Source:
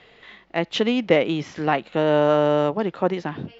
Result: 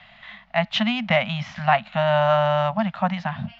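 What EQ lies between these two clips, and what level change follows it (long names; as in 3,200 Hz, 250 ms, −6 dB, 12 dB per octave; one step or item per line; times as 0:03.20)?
elliptic band-stop filter 220–640 Hz, stop band 40 dB
low-pass filter 4,000 Hz 12 dB per octave
+4.5 dB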